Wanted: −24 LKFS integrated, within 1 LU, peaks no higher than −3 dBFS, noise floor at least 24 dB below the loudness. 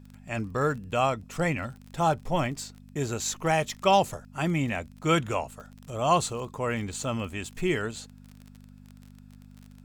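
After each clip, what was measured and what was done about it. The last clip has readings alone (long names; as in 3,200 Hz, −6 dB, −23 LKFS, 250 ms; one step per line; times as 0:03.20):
crackle rate 30 per second; mains hum 50 Hz; hum harmonics up to 250 Hz; level of the hum −48 dBFS; integrated loudness −28.5 LKFS; sample peak −8.5 dBFS; target loudness −24.0 LKFS
→ click removal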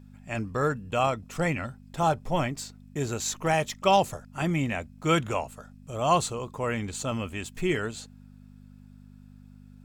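crackle rate 0.81 per second; mains hum 50 Hz; hum harmonics up to 250 Hz; level of the hum −48 dBFS
→ hum removal 50 Hz, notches 5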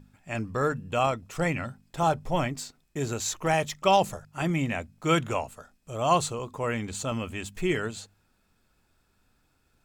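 mains hum none found; integrated loudness −28.5 LKFS; sample peak −8.5 dBFS; target loudness −24.0 LKFS
→ level +4.5 dB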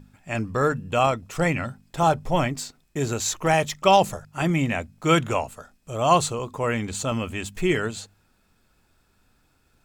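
integrated loudness −24.0 LKFS; sample peak −4.0 dBFS; background noise floor −65 dBFS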